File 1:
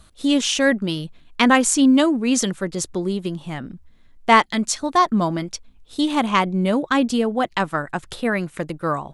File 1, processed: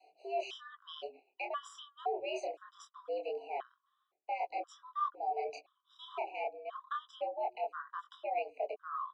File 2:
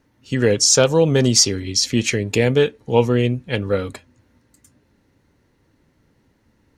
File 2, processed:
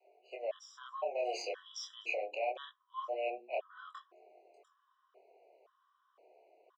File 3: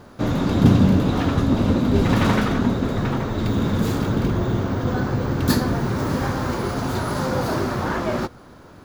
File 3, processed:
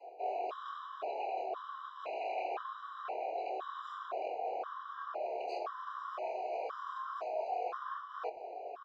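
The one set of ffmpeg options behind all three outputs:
ffmpeg -i in.wav -filter_complex "[0:a]acrossover=split=460|3000[link_01][link_02][link_03];[link_01]acompressor=threshold=-34dB:ratio=2.5[link_04];[link_04][link_02][link_03]amix=inputs=3:normalize=0,highpass=140,lowpass=5800,afreqshift=110,acrossover=split=4000[link_05][link_06];[link_06]asoftclip=type=tanh:threshold=-21.5dB[link_07];[link_05][link_07]amix=inputs=2:normalize=0,adynamicequalizer=threshold=0.0158:dfrequency=510:dqfactor=1.3:tfrequency=510:tqfactor=1.3:attack=5:release=100:ratio=0.375:range=1.5:mode=cutabove:tftype=bell,flanger=delay=22.5:depth=6.9:speed=0.24,asplit=3[link_08][link_09][link_10];[link_08]bandpass=frequency=730:width_type=q:width=8,volume=0dB[link_11];[link_09]bandpass=frequency=1090:width_type=q:width=8,volume=-6dB[link_12];[link_10]bandpass=frequency=2440:width_type=q:width=8,volume=-9dB[link_13];[link_11][link_12][link_13]amix=inputs=3:normalize=0,lowshelf=frequency=310:width_type=q:width=3:gain=-10.5,asplit=2[link_14][link_15];[link_15]adelay=16,volume=-13.5dB[link_16];[link_14][link_16]amix=inputs=2:normalize=0,areverse,acompressor=threshold=-48dB:ratio=4,areverse,acrossover=split=280[link_17][link_18];[link_17]adelay=100[link_19];[link_19][link_18]amix=inputs=2:normalize=0,afftfilt=real='re*gt(sin(2*PI*0.97*pts/sr)*(1-2*mod(floor(b*sr/1024/990),2)),0)':imag='im*gt(sin(2*PI*0.97*pts/sr)*(1-2*mod(floor(b*sr/1024/990),2)),0)':win_size=1024:overlap=0.75,volume=13dB" out.wav

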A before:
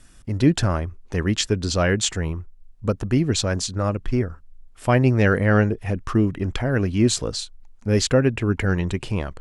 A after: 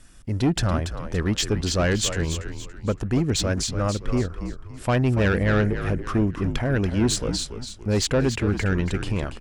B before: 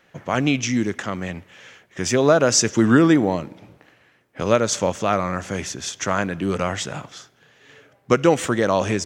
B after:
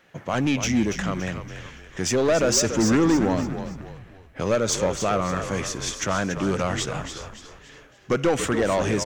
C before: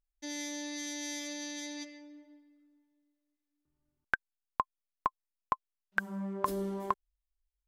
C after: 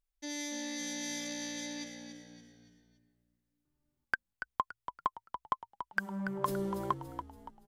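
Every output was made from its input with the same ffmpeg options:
ffmpeg -i in.wav -filter_complex "[0:a]aeval=exprs='(tanh(5.62*val(0)+0.1)-tanh(0.1))/5.62':channel_layout=same,asplit=5[link_01][link_02][link_03][link_04][link_05];[link_02]adelay=284,afreqshift=-59,volume=-9dB[link_06];[link_03]adelay=568,afreqshift=-118,volume=-17dB[link_07];[link_04]adelay=852,afreqshift=-177,volume=-24.9dB[link_08];[link_05]adelay=1136,afreqshift=-236,volume=-32.9dB[link_09];[link_01][link_06][link_07][link_08][link_09]amix=inputs=5:normalize=0" out.wav

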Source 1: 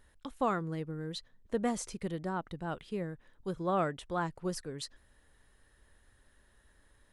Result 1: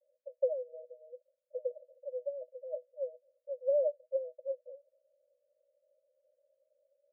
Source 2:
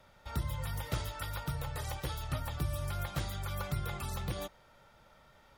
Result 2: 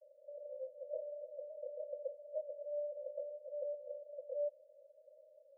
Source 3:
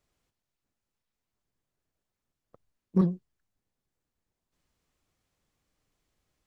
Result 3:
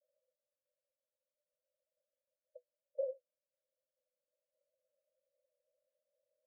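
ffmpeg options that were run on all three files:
ffmpeg -i in.wav -af "asuperpass=centerf=560:order=20:qfactor=3.9,volume=7.5dB" out.wav

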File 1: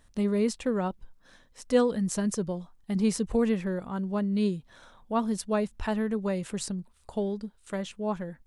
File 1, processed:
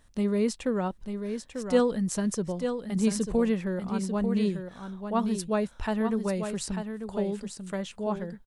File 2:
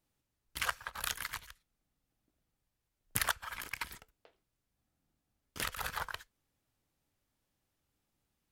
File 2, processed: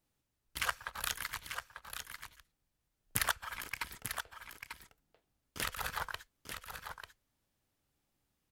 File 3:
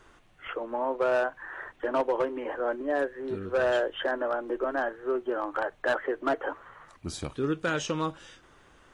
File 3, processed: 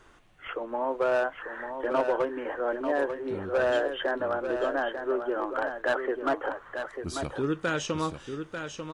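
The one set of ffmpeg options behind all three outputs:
ffmpeg -i in.wav -af "aecho=1:1:893:0.422" out.wav

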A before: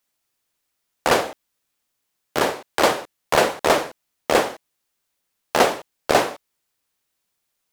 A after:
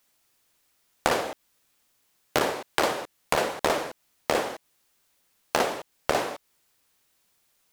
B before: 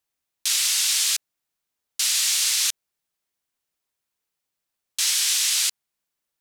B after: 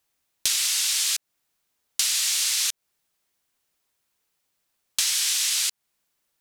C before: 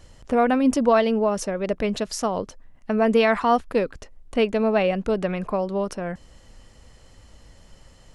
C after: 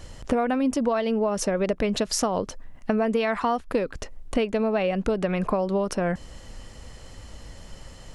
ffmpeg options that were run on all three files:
ffmpeg -i in.wav -af "acompressor=threshold=-27dB:ratio=16,aeval=exprs='clip(val(0),-1,0.1)':channel_layout=same,volume=7dB" out.wav

